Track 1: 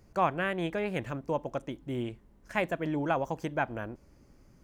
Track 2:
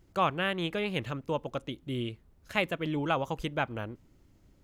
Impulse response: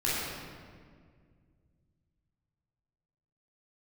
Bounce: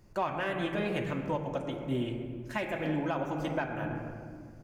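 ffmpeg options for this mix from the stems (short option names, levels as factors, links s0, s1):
-filter_complex "[0:a]volume=0.708,asplit=2[s0][s1];[s1]volume=0.299[s2];[1:a]asoftclip=type=tanh:threshold=0.112,asplit=2[s3][s4];[s4]adelay=3.2,afreqshift=1.2[s5];[s3][s5]amix=inputs=2:normalize=1,adelay=3.3,volume=0.668[s6];[2:a]atrim=start_sample=2205[s7];[s2][s7]afir=irnorm=-1:irlink=0[s8];[s0][s6][s8]amix=inputs=3:normalize=0,alimiter=limit=0.0891:level=0:latency=1:release=324"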